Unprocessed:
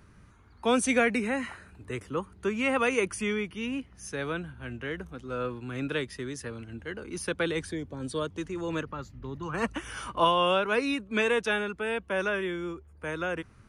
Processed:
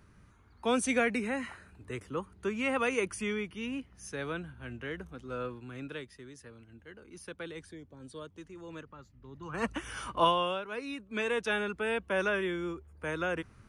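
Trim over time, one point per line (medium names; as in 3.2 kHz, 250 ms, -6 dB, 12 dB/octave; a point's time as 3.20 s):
5.35 s -4 dB
6.19 s -13 dB
9.23 s -13 dB
9.68 s -2 dB
10.29 s -2 dB
10.66 s -13 dB
11.71 s -1 dB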